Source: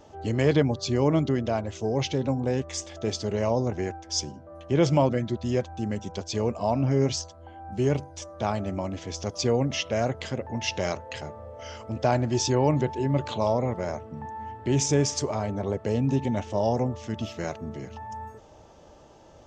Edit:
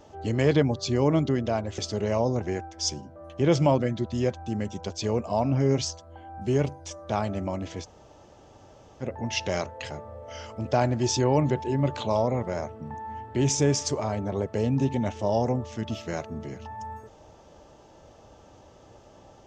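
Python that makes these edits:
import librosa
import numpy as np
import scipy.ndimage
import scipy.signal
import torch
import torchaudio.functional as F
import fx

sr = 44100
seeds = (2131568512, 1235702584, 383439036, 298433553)

y = fx.edit(x, sr, fx.cut(start_s=1.78, length_s=1.31),
    fx.room_tone_fill(start_s=9.14, length_s=1.19, crossfade_s=0.06), tone=tone)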